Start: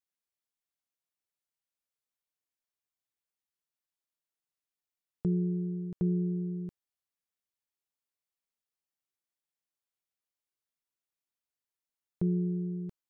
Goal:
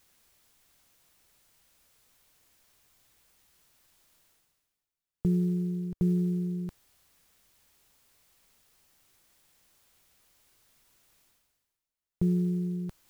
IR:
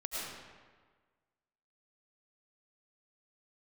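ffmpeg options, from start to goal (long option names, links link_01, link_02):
-af "acrusher=bits=8:mode=log:mix=0:aa=0.000001,areverse,acompressor=mode=upward:threshold=-45dB:ratio=2.5,areverse,lowshelf=frequency=110:gain=11"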